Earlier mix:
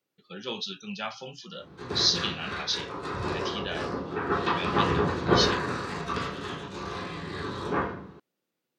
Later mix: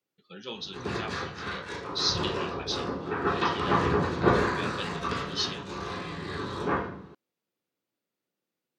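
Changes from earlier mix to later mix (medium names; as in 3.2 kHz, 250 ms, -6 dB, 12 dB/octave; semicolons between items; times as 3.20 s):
speech -4.0 dB; background: entry -1.05 s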